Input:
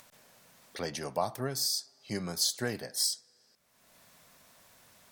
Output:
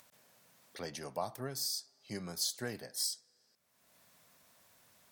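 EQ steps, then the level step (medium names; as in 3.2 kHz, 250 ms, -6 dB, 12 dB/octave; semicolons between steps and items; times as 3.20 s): high-pass 52 Hz; treble shelf 12 kHz +4 dB; -6.5 dB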